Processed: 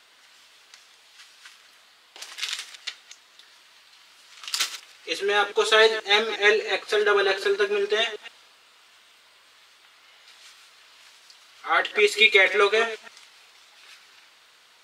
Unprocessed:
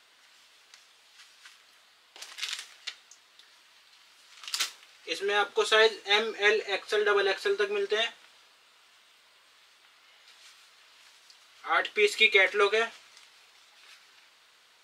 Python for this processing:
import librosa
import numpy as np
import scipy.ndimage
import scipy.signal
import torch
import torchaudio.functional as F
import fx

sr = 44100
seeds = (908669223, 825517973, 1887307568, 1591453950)

y = fx.reverse_delay(x, sr, ms=120, wet_db=-12.5)
y = F.gain(torch.from_numpy(y), 4.5).numpy()